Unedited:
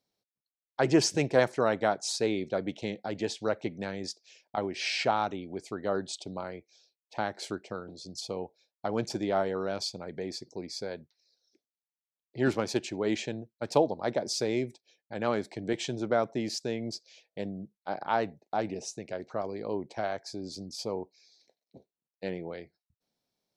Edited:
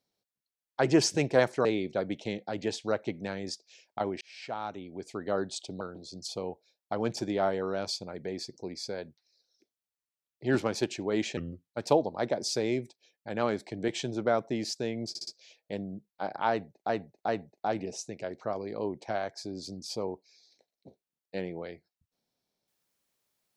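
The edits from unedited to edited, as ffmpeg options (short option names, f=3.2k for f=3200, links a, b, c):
-filter_complex "[0:a]asplit=11[a][b][c][d][e][f][g][h][i][j][k];[a]atrim=end=1.652[l];[b]atrim=start=2.218:end=4.78,asetpts=PTS-STARTPTS,afade=t=out:st=2.558:d=0.004:c=hsin[m];[c]atrim=start=4.78:end=6.382,asetpts=PTS-STARTPTS,afade=t=in:d=1.02[n];[d]atrim=start=7.738:end=13.304[o];[e]atrim=start=13.3:end=13.56,asetpts=PTS-STARTPTS,asetrate=33516,aresample=44100[p];[f]atrim=start=13.556:end=17.002[q];[g]atrim=start=16.938:end=17.002[r];[h]atrim=start=16.938:end=17.002[s];[i]atrim=start=16.938:end=18.562[t];[j]atrim=start=18.168:end=18.562[u];[k]atrim=start=18.168[v];[m][n]concat=n=2:v=0:a=1[w];[l][w]acrossfade=d=0.004:c1=hsin:c2=hsin[x];[x][o]acrossfade=d=0.004:c1=hsin:c2=hsin[y];[y][p]acrossfade=d=0.004:c1=hsin:c2=hsin[z];[z][q]acrossfade=d=0.004:c1=hsin:c2=hsin[aa];[aa][r]acrossfade=d=0.004:c1=hsin:c2=hsin[ab];[ab][s]acrossfade=d=0.004:c1=hsin:c2=hsin[ac];[ac][t]acrossfade=d=0.004:c1=hsin:c2=hsin[ad];[ad][u]acrossfade=d=0.004:c1=hsin:c2=hsin[ae];[ae][v]acrossfade=d=0.004:c1=hsin:c2=hsin"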